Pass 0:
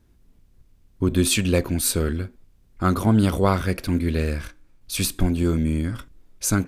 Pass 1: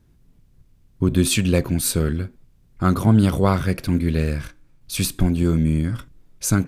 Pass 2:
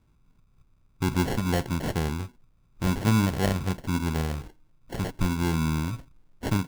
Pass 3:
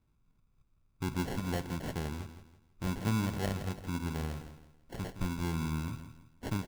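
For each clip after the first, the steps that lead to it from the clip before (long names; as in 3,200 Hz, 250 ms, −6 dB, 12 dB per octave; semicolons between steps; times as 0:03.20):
parametric band 140 Hz +9 dB 0.68 octaves
decimation without filtering 36×; level −7 dB
repeating echo 165 ms, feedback 33%, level −11 dB; level −9 dB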